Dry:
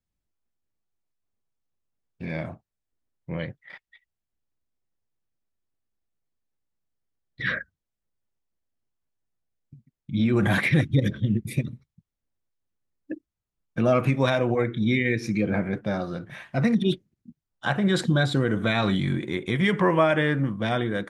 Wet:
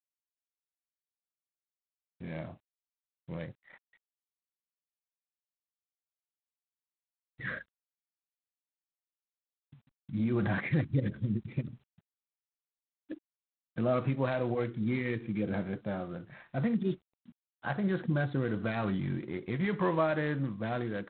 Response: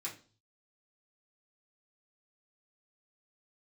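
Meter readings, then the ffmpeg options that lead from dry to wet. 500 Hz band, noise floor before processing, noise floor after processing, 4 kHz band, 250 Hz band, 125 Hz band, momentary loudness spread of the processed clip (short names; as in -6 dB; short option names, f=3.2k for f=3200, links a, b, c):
-8.0 dB, under -85 dBFS, under -85 dBFS, -17.5 dB, -8.0 dB, -8.0 dB, 14 LU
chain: -af "lowpass=1.8k,volume=-8dB" -ar 8000 -c:a adpcm_g726 -b:a 24k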